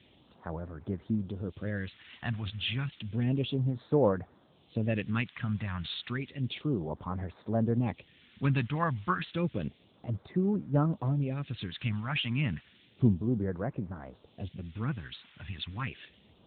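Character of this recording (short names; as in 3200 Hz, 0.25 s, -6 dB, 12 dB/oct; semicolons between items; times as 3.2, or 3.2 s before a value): a quantiser's noise floor 8-bit, dither triangular; phasing stages 2, 0.31 Hz, lowest notch 430–2900 Hz; AMR-NB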